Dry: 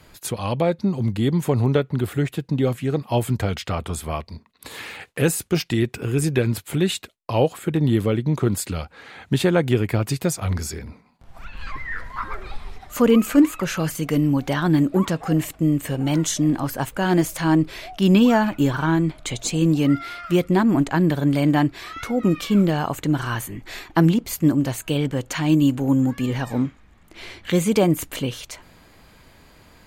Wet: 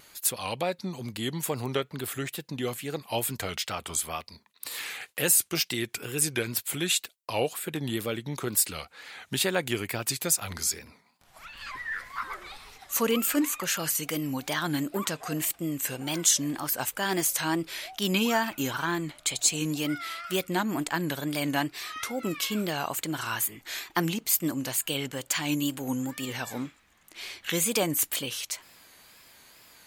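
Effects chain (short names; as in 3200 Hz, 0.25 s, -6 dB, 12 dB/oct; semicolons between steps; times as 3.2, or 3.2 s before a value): tilt +3.5 dB/oct; wow and flutter 98 cents; gain -5.5 dB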